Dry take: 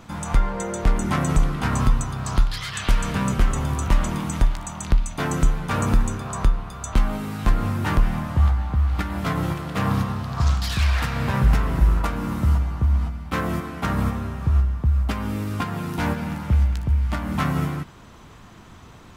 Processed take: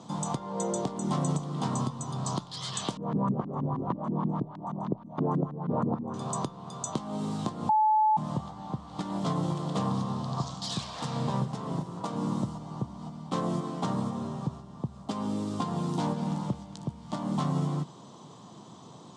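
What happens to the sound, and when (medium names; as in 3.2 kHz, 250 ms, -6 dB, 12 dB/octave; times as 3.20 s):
2.97–6.14 s: LFO low-pass saw up 6.3 Hz 210–1800 Hz
7.69–8.17 s: bleep 863 Hz -12.5 dBFS
whole clip: compression 3:1, threshold -24 dBFS; elliptic band-pass 140–8200 Hz, stop band 40 dB; high-order bell 1.9 kHz -15 dB 1.2 oct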